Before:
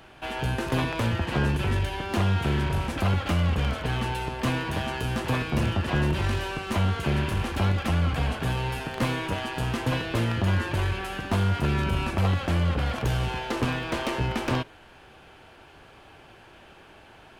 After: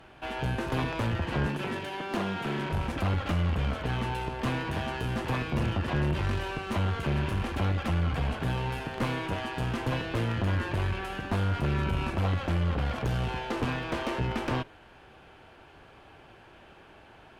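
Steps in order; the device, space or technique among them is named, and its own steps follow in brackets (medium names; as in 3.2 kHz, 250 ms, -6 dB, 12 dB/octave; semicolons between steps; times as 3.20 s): 1.46–2.72 s: high-pass 160 Hz 24 dB/octave; tube preamp driven hard (valve stage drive 21 dB, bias 0.45; treble shelf 3.9 kHz -7 dB)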